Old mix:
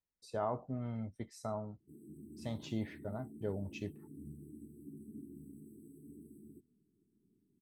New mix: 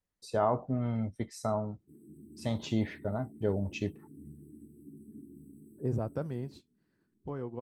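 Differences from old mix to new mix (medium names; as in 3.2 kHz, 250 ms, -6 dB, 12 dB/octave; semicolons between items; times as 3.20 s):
first voice +8.0 dB; second voice: unmuted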